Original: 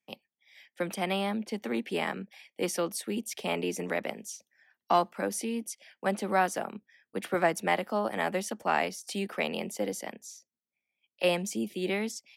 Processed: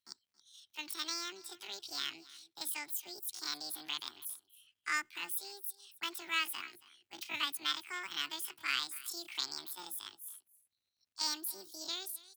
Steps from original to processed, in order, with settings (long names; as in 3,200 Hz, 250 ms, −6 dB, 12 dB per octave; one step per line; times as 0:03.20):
guitar amp tone stack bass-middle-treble 10-0-10
pitch shifter +9.5 semitones
surface crackle 190 per second −74 dBFS
graphic EQ with 15 bands 100 Hz +12 dB, 250 Hz +5 dB, 1,000 Hz −3 dB, 2,500 Hz +5 dB
single-tap delay 275 ms −20 dB